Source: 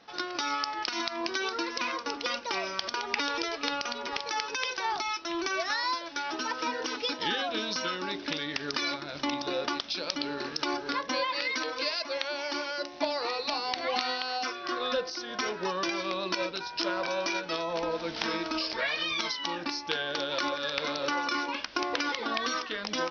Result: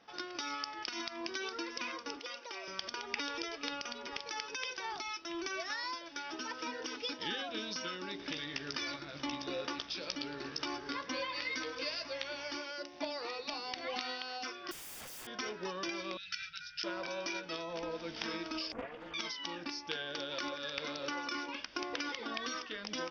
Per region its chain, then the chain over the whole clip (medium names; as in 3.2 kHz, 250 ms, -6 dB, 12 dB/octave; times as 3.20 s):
2.19–2.68 s: high-pass 320 Hz 24 dB/octave + compression 1.5:1, threshold -39 dBFS
8.18–12.56 s: mains buzz 60 Hz, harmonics 37, -52 dBFS 0 dB/octave + doubling 15 ms -8 dB + delay 110 ms -14.5 dB
14.71–15.27 s: peaking EQ 160 Hz +10.5 dB 0.55 oct + integer overflow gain 36.5 dB
16.17–16.84 s: brick-wall FIR band-stop 160–1300 Hz + hum notches 60/120/180/240 Hz
18.72–19.14 s: Chebyshev low-pass 740 Hz + comb 4.1 ms, depth 86% + loudspeaker Doppler distortion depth 0.66 ms
whole clip: band-stop 4.1 kHz, Q 8; dynamic bell 890 Hz, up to -5 dB, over -43 dBFS, Q 0.83; trim -6 dB